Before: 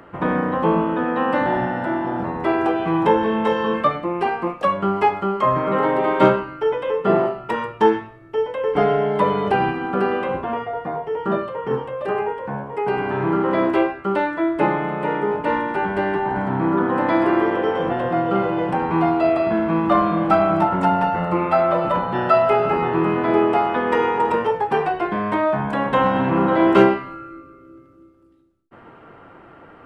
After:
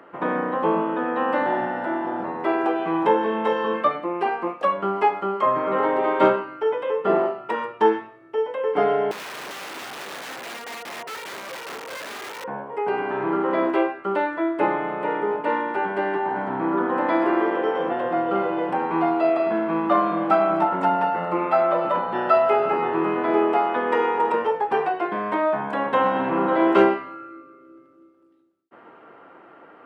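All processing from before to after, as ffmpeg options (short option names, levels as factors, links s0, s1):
-filter_complex "[0:a]asettb=1/sr,asplit=3[s0][s1][s2];[s0]atrim=end=9.114[s3];[s1]atrim=start=9.11:end=12.44,asetpts=PTS-STARTPTS,afade=t=in:d=0.004:c=qsin,afade=t=out:st=3.326:d=0.004:c=qsin,highpass=f=190:p=1,acompressor=threshold=0.0562:ratio=8:attack=3.2:release=140:knee=1:detection=peak,aeval=exprs='(mod(21.1*val(0)+1,2)-1)/21.1':c=same[s4];[s2]atrim=start=12.436[s5];[s3][s4]acrossfade=d=0.004:c1=hsin:c2=qsin[s6];[s6][s5]acrossfade=d=0.004:c1=qsin:c2=hsin,highpass=290,highshelf=f=4300:g=-7.5,volume=0.841"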